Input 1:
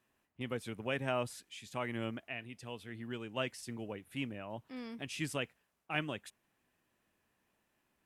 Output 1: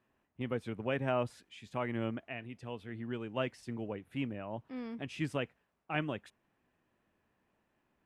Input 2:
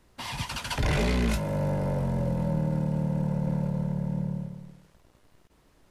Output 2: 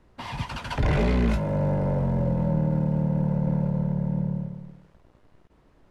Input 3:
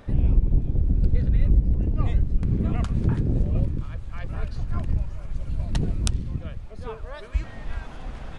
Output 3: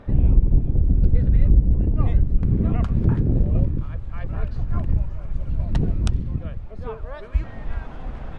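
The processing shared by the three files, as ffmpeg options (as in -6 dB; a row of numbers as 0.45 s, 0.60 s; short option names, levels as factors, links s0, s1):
-af "lowpass=f=1500:p=1,volume=1.5"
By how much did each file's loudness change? +2.0 LU, +3.0 LU, +3.5 LU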